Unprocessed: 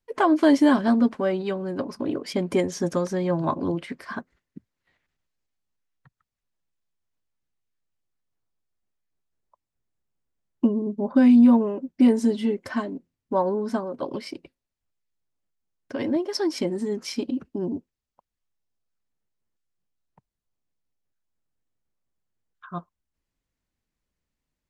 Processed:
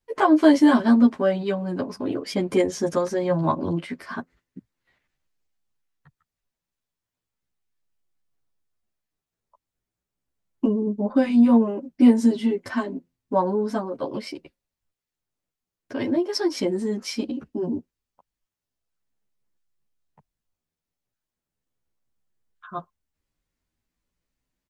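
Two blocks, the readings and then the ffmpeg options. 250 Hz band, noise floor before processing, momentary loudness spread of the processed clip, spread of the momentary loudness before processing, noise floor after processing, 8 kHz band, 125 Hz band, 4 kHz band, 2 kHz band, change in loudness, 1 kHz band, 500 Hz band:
+1.0 dB, -85 dBFS, 18 LU, 18 LU, under -85 dBFS, n/a, +1.5 dB, +2.0 dB, +1.5 dB, +1.0 dB, +2.0 dB, +1.5 dB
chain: -filter_complex "[0:a]asplit=2[a][b];[b]adelay=10.9,afreqshift=0.35[c];[a][c]amix=inputs=2:normalize=1,volume=4.5dB"

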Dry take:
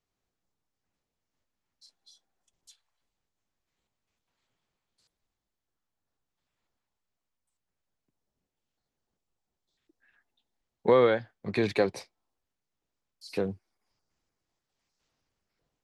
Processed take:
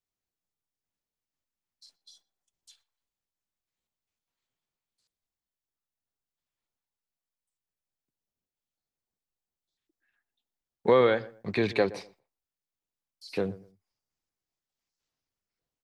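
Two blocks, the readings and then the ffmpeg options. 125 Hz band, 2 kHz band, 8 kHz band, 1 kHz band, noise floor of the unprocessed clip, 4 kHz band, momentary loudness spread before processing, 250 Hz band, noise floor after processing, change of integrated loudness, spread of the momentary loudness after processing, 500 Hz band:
0.0 dB, +1.5 dB, n/a, +0.5 dB, under -85 dBFS, +1.5 dB, 13 LU, 0.0 dB, under -85 dBFS, +0.5 dB, 15 LU, 0.0 dB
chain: -filter_complex "[0:a]aemphasis=mode=production:type=75kf,agate=range=-11dB:threshold=-57dB:ratio=16:detection=peak,highshelf=f=6.8k:g=-11,acrossover=split=4500[a][b];[b]acompressor=threshold=-55dB:ratio=4:attack=1:release=60[c];[a][c]amix=inputs=2:normalize=0,asplit=2[d][e];[e]adelay=120,lowpass=f=1.3k:p=1,volume=-18dB,asplit=2[f][g];[g]adelay=120,lowpass=f=1.3k:p=1,volume=0.26[h];[f][h]amix=inputs=2:normalize=0[i];[d][i]amix=inputs=2:normalize=0"

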